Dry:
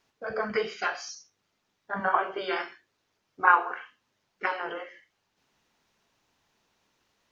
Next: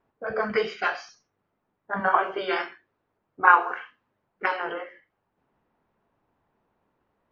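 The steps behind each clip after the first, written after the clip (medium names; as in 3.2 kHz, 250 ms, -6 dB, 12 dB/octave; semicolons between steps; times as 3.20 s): level-controlled noise filter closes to 1.1 kHz, open at -22 dBFS; trim +3.5 dB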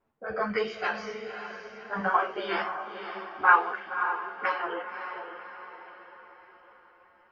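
echo that smears into a reverb 556 ms, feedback 49%, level -8.5 dB; three-phase chorus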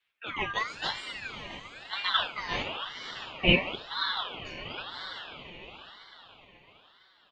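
spectral replace 4.35–4.75 s, 270–2800 Hz before; delay 678 ms -15 dB; ring modulator with a swept carrier 2 kHz, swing 30%, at 0.99 Hz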